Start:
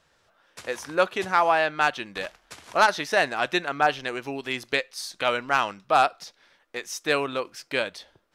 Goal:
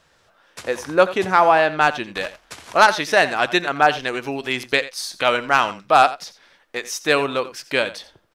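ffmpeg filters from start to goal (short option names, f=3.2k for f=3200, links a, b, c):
-filter_complex "[0:a]asettb=1/sr,asplit=3[a][b][c];[a]atrim=end=0.634[d];[b]atrim=start=0.63:end=2.04,asetpts=PTS-STARTPTS,afade=t=in:d=0.004:c=qsin,afade=t=out:st=1.406:d=0.004:c=qsin,tiltshelf=f=970:g=3[e];[c]atrim=start=2.036[f];[d][e]acrossfade=d=0.004:c1=hsin:c2=qsin[g];[g][f]acrossfade=d=0.004:c1=qsin:c2=hsin,asplit=2[h][i];[i]aecho=0:1:86:0.168[j];[h][j]amix=inputs=2:normalize=0,volume=6dB"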